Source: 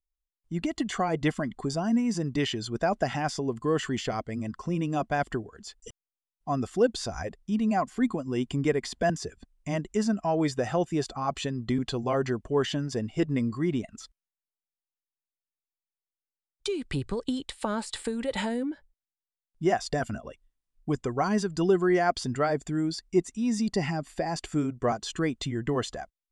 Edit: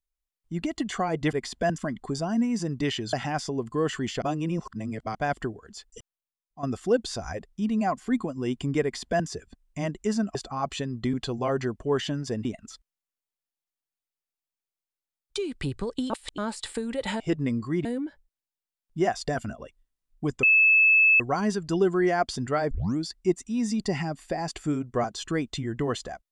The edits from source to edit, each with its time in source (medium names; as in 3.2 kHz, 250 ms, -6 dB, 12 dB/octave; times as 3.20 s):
2.68–3.03 s: delete
4.12–5.05 s: reverse
5.77–6.53 s: fade out, to -12 dB
8.73–9.18 s: copy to 1.33 s
10.25–11.00 s: delete
13.10–13.75 s: move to 18.50 s
17.40–17.68 s: reverse
21.08 s: add tone 2.61 kHz -15 dBFS 0.77 s
22.59 s: tape start 0.26 s